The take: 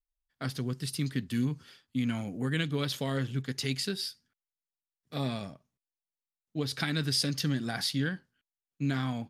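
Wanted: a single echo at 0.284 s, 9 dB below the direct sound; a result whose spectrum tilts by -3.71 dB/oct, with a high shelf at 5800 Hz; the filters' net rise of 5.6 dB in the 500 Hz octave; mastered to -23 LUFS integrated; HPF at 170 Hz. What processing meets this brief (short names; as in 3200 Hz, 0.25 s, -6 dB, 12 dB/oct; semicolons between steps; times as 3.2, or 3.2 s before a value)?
HPF 170 Hz; bell 500 Hz +7 dB; high shelf 5800 Hz +8 dB; echo 0.284 s -9 dB; gain +8 dB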